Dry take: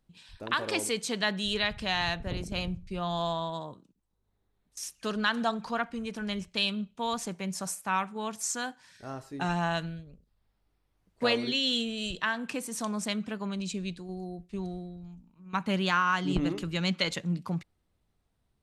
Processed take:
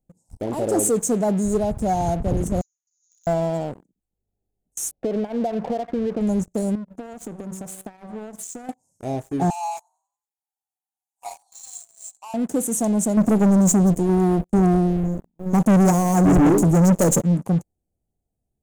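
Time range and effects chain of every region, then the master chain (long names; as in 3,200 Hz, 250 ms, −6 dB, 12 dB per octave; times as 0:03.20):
0:02.61–0:03.27: variable-slope delta modulation 64 kbit/s + linear-phase brick-wall band-pass 2,800–7,100 Hz
0:04.91–0:06.21: low-pass filter 2,100 Hz 24 dB per octave + parametric band 530 Hz +10 dB 1.3 octaves + downward compressor 16 to 1, threshold −33 dBFS
0:06.75–0:08.69: tilt shelving filter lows +4 dB, about 1,200 Hz + hum removal 189.8 Hz, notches 27 + downward compressor 16 to 1, threshold −42 dBFS
0:09.50–0:12.34: Butterworth high-pass 800 Hz 72 dB per octave + parametric band 2,900 Hz +8 dB 0.82 octaves + echo with shifted repeats 92 ms, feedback 57%, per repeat +37 Hz, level −17.5 dB
0:13.17–0:17.23: gain on one half-wave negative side −3 dB + high-shelf EQ 11,000 Hz +6 dB + leveller curve on the samples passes 3
whole clip: Chebyshev band-stop filter 780–6,600 Hz, order 4; leveller curve on the samples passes 3; level +3 dB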